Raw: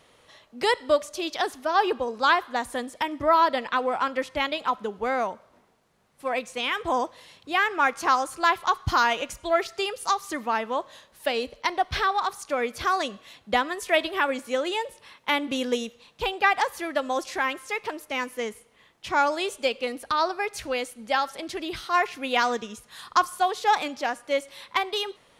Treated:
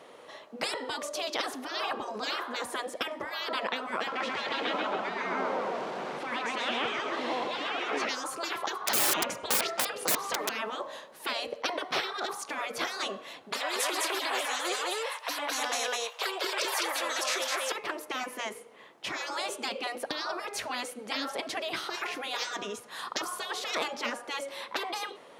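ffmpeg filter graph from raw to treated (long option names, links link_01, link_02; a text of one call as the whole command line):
ffmpeg -i in.wav -filter_complex "[0:a]asettb=1/sr,asplit=3[link_01][link_02][link_03];[link_01]atrim=end=4.074[link_04];[link_02]atrim=start=4.07:end=8.09,asetpts=PTS-STARTPTS,afade=type=in:duration=0.004:curve=qsin,afade=type=out:start_time=4.016:duration=0.004:curve=qsin,aeval=exprs='val(0)+0.5*0.0133*sgn(val(0))':channel_layout=same,highpass=150,lowpass=4300,aecho=1:1:133|266|399|532|665|798:0.531|0.25|0.117|0.0551|0.0259|0.0122,atrim=end_sample=177282[link_05];[link_03]atrim=start=8.086[link_06];[link_04][link_05]acrossfade=duration=0.004:curve1=hsin:curve2=qsin[link_07];[link_07][link_06]acrossfade=duration=0.004:curve1=qsin:curve2=hsin,asettb=1/sr,asplit=3[link_08][link_09][link_10];[link_08]atrim=end=8.814[link_11];[link_09]atrim=start=8.81:end=10.49,asetpts=PTS-STARTPTS,afade=type=in:duration=0.004:curve=qsin,afade=type=out:start_time=1.676:duration=0.004:curve=qsin,lowpass=frequency=2800:poles=1,acontrast=67,aeval=exprs='(mod(5.01*val(0)+1,2)-1)/5.01':channel_layout=same[link_12];[link_10]atrim=start=10.486[link_13];[link_11][link_12]acrossfade=duration=0.004:curve1=hsin:curve2=qsin[link_14];[link_14][link_13]acrossfade=duration=0.004:curve1=qsin:curve2=hsin,asettb=1/sr,asplit=3[link_15][link_16][link_17];[link_15]atrim=end=13.524[link_18];[link_16]atrim=start=13.52:end=17.72,asetpts=PTS-STARTPTS,afade=type=in:duration=0.004:curve=qsin,afade=type=out:start_time=4.196:duration=0.004:curve=qsin,highpass=frequency=710:width=0.5412,highpass=frequency=710:width=1.3066,acontrast=89,aecho=1:1:206:0.668,atrim=end_sample=185220[link_19];[link_17]atrim=start=17.716[link_20];[link_18][link_19]acrossfade=duration=0.004:curve1=hsin:curve2=qsin[link_21];[link_21][link_20]acrossfade=duration=0.004:curve1=qsin:curve2=hsin,afftfilt=real='re*lt(hypot(re,im),0.0891)':imag='im*lt(hypot(re,im),0.0891)':win_size=1024:overlap=0.75,highpass=340,tiltshelf=frequency=1400:gain=6.5,volume=6dB" out.wav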